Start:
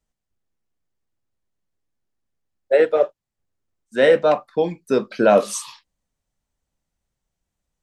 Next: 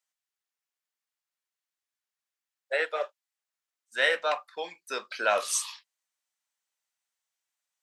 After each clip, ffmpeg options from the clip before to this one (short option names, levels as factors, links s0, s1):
-af "highpass=1300"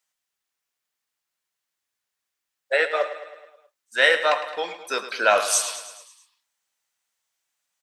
-af "aecho=1:1:107|214|321|428|535|642:0.251|0.143|0.0816|0.0465|0.0265|0.0151,volume=2.24"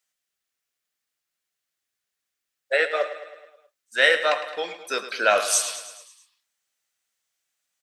-af "equalizer=f=940:w=3.2:g=-7"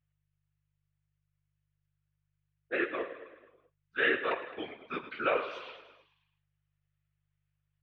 -af "afftfilt=real='hypot(re,im)*cos(2*PI*random(0))':imag='hypot(re,im)*sin(2*PI*random(1))':win_size=512:overlap=0.75,aeval=exprs='val(0)+0.000562*(sin(2*PI*50*n/s)+sin(2*PI*2*50*n/s)/2+sin(2*PI*3*50*n/s)/3+sin(2*PI*4*50*n/s)/4+sin(2*PI*5*50*n/s)/5)':c=same,highpass=f=170:t=q:w=0.5412,highpass=f=170:t=q:w=1.307,lowpass=f=3200:t=q:w=0.5176,lowpass=f=3200:t=q:w=0.7071,lowpass=f=3200:t=q:w=1.932,afreqshift=-99,volume=0.668"